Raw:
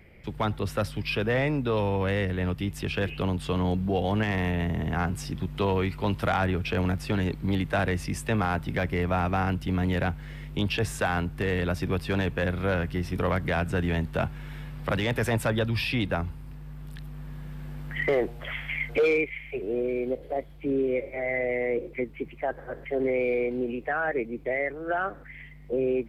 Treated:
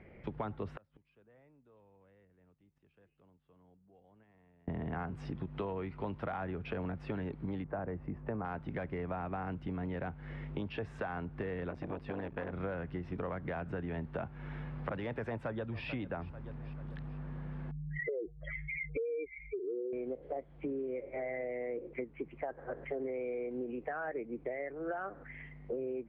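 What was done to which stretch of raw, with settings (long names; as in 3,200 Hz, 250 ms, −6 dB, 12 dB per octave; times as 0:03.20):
0:00.73–0:04.68: gate with flip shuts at −28 dBFS, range −38 dB
0:07.64–0:08.45: low-pass filter 1,200 Hz
0:11.70–0:12.53: saturating transformer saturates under 510 Hz
0:15.27–0:15.85: delay throw 440 ms, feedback 45%, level −18 dB
0:17.71–0:19.93: expanding power law on the bin magnitudes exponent 3
whole clip: Bessel low-pass filter 1,300 Hz, order 2; low-shelf EQ 120 Hz −9.5 dB; downward compressor 6 to 1, threshold −38 dBFS; level +2 dB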